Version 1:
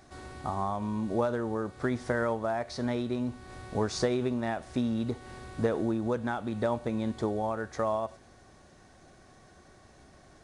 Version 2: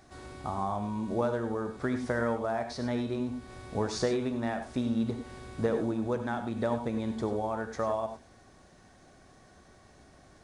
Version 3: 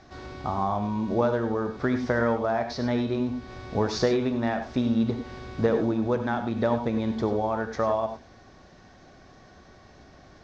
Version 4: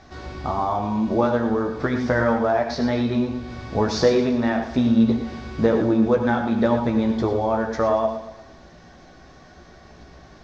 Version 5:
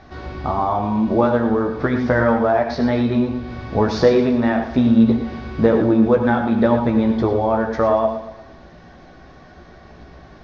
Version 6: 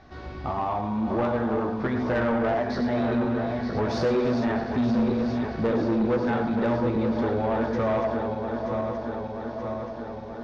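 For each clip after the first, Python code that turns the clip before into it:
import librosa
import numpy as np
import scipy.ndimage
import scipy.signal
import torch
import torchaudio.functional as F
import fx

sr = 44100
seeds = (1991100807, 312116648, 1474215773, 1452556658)

y1 = fx.rev_gated(x, sr, seeds[0], gate_ms=120, shape='rising', drr_db=7.5)
y1 = y1 * librosa.db_to_amplitude(-1.5)
y2 = scipy.signal.sosfilt(scipy.signal.butter(6, 6000.0, 'lowpass', fs=sr, output='sos'), y1)
y2 = y2 * librosa.db_to_amplitude(5.5)
y3 = fx.chorus_voices(y2, sr, voices=6, hz=0.66, base_ms=15, depth_ms=3.2, mix_pct=35)
y3 = fx.echo_feedback(y3, sr, ms=116, feedback_pct=47, wet_db=-12.0)
y3 = y3 * librosa.db_to_amplitude(7.0)
y4 = fx.air_absorb(y3, sr, metres=150.0)
y4 = y4 * librosa.db_to_amplitude(4.0)
y5 = fx.reverse_delay_fb(y4, sr, ms=464, feedback_pct=78, wet_db=-7.0)
y5 = 10.0 ** (-12.0 / 20.0) * np.tanh(y5 / 10.0 ** (-12.0 / 20.0))
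y5 = y5 * librosa.db_to_amplitude(-6.5)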